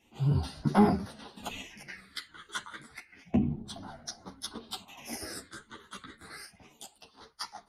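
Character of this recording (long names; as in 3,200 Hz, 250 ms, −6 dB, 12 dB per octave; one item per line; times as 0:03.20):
phaser sweep stages 8, 0.3 Hz, lowest notch 720–2,600 Hz
tremolo saw up 0.62 Hz, depth 45%
a shimmering, thickened sound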